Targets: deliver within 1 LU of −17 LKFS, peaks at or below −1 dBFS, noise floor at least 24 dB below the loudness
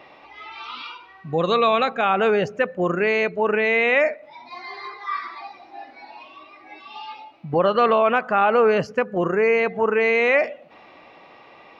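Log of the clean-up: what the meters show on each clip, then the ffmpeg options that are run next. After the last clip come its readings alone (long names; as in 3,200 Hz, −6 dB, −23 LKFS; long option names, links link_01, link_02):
integrated loudness −20.0 LKFS; sample peak −7.0 dBFS; target loudness −17.0 LKFS
→ -af "volume=3dB"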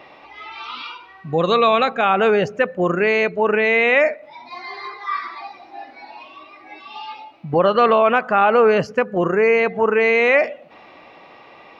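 integrated loudness −17.0 LKFS; sample peak −4.0 dBFS; background noise floor −45 dBFS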